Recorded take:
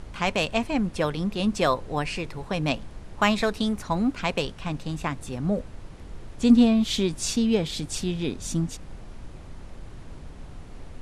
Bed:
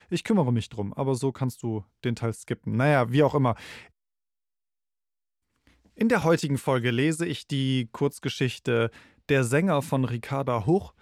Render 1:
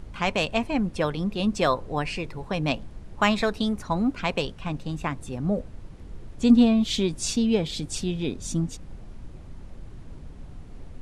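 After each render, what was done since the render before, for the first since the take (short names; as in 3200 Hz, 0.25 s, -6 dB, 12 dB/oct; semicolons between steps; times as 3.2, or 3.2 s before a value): denoiser 6 dB, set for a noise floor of -43 dBFS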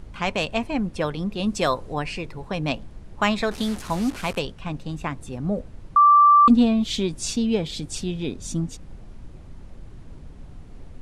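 1.46–1.94 high shelf 5400 Hz +7.5 dB; 3.51–4.39 delta modulation 64 kbps, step -30.5 dBFS; 5.96–6.48 bleep 1170 Hz -10 dBFS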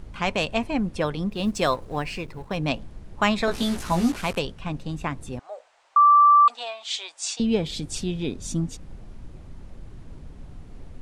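1.3–2.57 G.711 law mismatch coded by A; 3.46–4.16 doubler 17 ms -2 dB; 5.39–7.4 elliptic band-pass 720–8200 Hz, stop band 50 dB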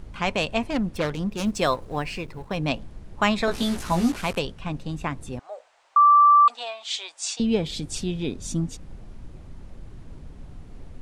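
0.7–1.54 self-modulated delay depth 0.23 ms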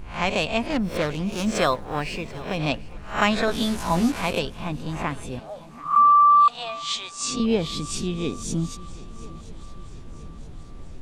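spectral swells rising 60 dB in 0.36 s; swung echo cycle 0.976 s, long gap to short 3:1, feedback 50%, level -21 dB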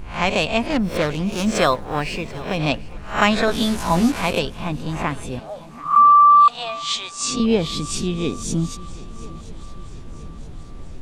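gain +4 dB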